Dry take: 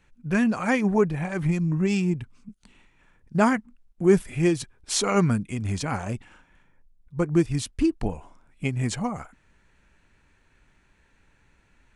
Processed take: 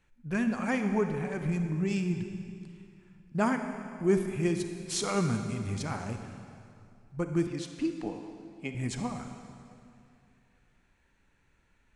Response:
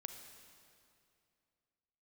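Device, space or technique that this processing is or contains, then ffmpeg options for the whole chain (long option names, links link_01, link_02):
stairwell: -filter_complex "[1:a]atrim=start_sample=2205[link_01];[0:a][link_01]afir=irnorm=-1:irlink=0,asettb=1/sr,asplit=3[link_02][link_03][link_04];[link_02]atrim=end=7.474[link_05];[link_03]atrim=start=7.47:end=8.75,asetpts=PTS-STARTPTS,afade=type=in:duration=0.004:curve=qsin,afade=type=out:start_time=1.276:duration=0.004:curve=qsin,acrossover=split=170 7200:gain=0.112 1 0.2[link_06][link_07][link_08];[link_06][link_07][link_08]amix=inputs=3:normalize=0[link_09];[link_04]atrim=start=8.746[link_10];[link_05][link_09]acrossfade=duration=0.004:curve1=hsin:curve2=qsin[link_11];[link_11][link_10]acrossfade=duration=0.004:curve1=qsin:curve2=hsin,volume=-3dB"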